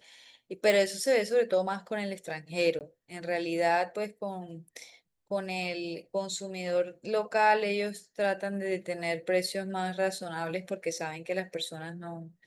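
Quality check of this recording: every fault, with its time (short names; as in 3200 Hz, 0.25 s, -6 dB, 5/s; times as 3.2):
0.7 pop
2.79–2.81 gap 18 ms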